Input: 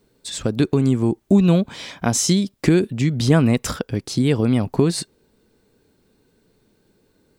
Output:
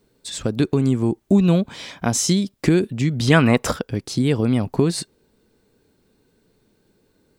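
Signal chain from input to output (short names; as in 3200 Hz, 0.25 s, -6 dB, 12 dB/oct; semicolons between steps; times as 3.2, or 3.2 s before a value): 3.27–3.71 bell 3400 Hz -> 530 Hz +12 dB 2.3 oct; gain -1 dB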